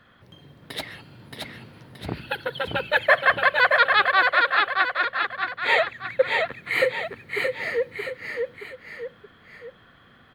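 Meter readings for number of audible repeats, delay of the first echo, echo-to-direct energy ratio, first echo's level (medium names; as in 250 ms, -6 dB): 3, 624 ms, -2.5 dB, -3.5 dB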